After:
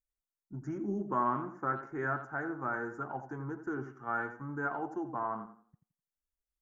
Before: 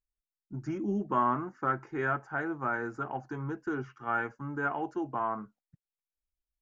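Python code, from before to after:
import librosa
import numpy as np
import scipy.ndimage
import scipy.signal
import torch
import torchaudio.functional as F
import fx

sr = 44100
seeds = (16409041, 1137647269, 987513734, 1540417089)

y = fx.band_shelf(x, sr, hz=3400.0, db=-11.5, octaves=1.3)
y = fx.echo_tape(y, sr, ms=87, feedback_pct=33, wet_db=-9, lp_hz=2000.0, drive_db=16.0, wow_cents=32)
y = y * 10.0 ** (-3.5 / 20.0)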